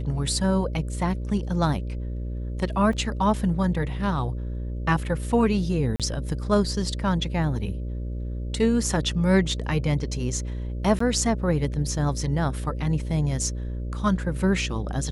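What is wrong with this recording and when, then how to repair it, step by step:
mains buzz 60 Hz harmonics 10 −30 dBFS
0:02.93: drop-out 2.9 ms
0:05.96–0:06.00: drop-out 37 ms
0:10.99–0:11.00: drop-out 14 ms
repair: hum removal 60 Hz, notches 10
repair the gap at 0:02.93, 2.9 ms
repair the gap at 0:05.96, 37 ms
repair the gap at 0:10.99, 14 ms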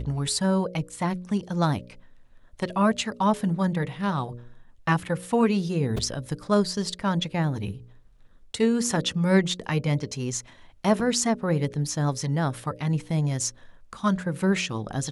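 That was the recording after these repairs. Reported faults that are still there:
none of them is left

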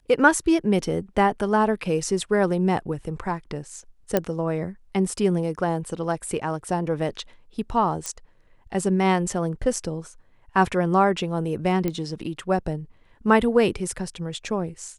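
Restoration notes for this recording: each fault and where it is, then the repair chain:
0:04.17: click −7 dBFS
0:08.06: click −14 dBFS
0:11.88: click −13 dBFS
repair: click removal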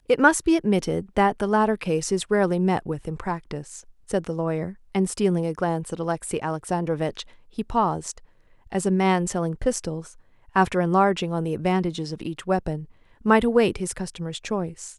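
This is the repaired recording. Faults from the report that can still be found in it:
none of them is left

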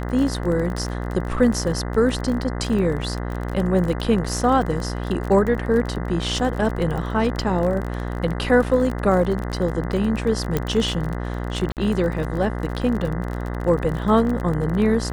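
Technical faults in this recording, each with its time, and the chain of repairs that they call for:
mains buzz 60 Hz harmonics 34 −27 dBFS
surface crackle 33 per second −26 dBFS
0:10.57: click −8 dBFS
0:11.72–0:11.77: drop-out 48 ms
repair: click removal
hum removal 60 Hz, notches 34
repair the gap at 0:11.72, 48 ms

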